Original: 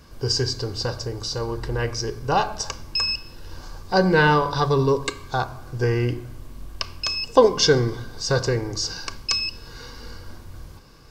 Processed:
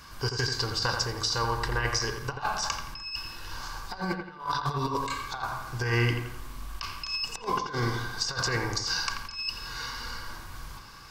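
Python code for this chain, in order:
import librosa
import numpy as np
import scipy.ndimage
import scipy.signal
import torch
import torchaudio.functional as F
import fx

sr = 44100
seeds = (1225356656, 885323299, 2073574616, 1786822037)

p1 = fx.low_shelf_res(x, sr, hz=740.0, db=-9.5, q=1.5)
p2 = fx.over_compress(p1, sr, threshold_db=-30.0, ratio=-0.5)
y = p2 + fx.echo_wet_lowpass(p2, sr, ms=85, feedback_pct=38, hz=3100.0, wet_db=-6, dry=0)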